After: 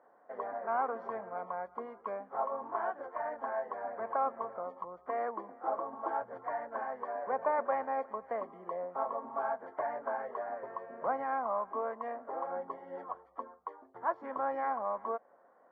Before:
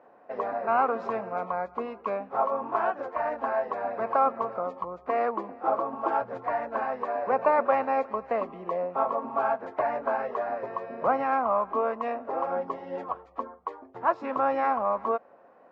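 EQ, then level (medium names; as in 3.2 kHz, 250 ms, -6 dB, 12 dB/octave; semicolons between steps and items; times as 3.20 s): dynamic bell 1.3 kHz, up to -6 dB, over -45 dBFS, Q 4.4; Savitzky-Golay filter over 41 samples; tilt EQ +2.5 dB/octave; -6.5 dB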